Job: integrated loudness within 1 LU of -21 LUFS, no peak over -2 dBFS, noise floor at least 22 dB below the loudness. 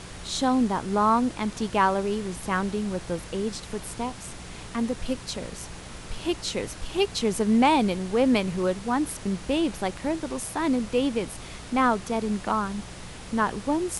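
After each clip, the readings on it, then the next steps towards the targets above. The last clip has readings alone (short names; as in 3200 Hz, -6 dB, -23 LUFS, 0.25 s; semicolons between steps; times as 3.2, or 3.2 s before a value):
hum 60 Hz; harmonics up to 180 Hz; hum level -44 dBFS; noise floor -41 dBFS; noise floor target -49 dBFS; loudness -26.5 LUFS; peak -8.0 dBFS; loudness target -21.0 LUFS
-> de-hum 60 Hz, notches 3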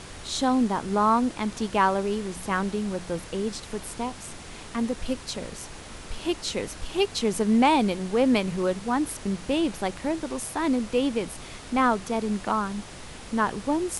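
hum none; noise floor -42 dBFS; noise floor target -49 dBFS
-> noise print and reduce 7 dB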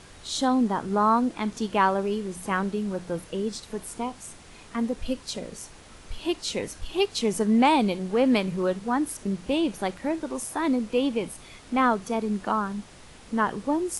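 noise floor -48 dBFS; noise floor target -49 dBFS
-> noise print and reduce 6 dB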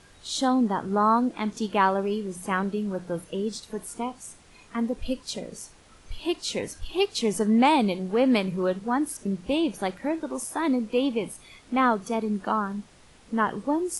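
noise floor -54 dBFS; loudness -26.5 LUFS; peak -8.5 dBFS; loudness target -21.0 LUFS
-> gain +5.5 dB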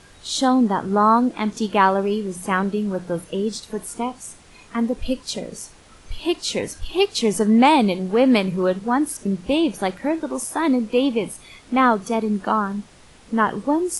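loudness -21.0 LUFS; peak -3.0 dBFS; noise floor -48 dBFS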